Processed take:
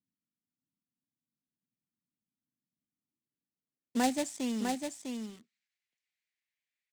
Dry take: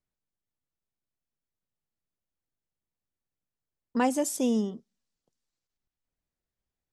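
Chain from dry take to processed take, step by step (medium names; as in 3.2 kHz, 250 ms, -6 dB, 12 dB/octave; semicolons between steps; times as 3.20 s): band-pass sweep 250 Hz -> 2.2 kHz, 2.92–5.35 s; in parallel at -5.5 dB: companded quantiser 4-bit; on the sum: ten-band graphic EQ 125 Hz +8 dB, 250 Hz +7 dB, 500 Hz -7 dB, 1 kHz -9 dB, 2 kHz +8 dB, 4 kHz +6 dB, 8 kHz +12 dB; delay 652 ms -5 dB; trim +1.5 dB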